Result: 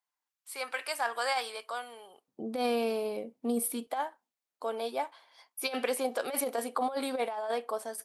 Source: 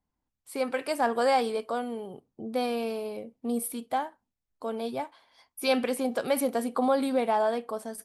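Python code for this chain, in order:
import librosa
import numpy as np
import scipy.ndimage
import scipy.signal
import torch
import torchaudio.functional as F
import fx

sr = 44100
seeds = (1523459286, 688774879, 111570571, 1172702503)

y = fx.highpass(x, sr, hz=fx.steps((0.0, 1100.0), (2.28, 210.0), (3.87, 460.0)), slope=12)
y = fx.over_compress(y, sr, threshold_db=-29.0, ratio=-0.5)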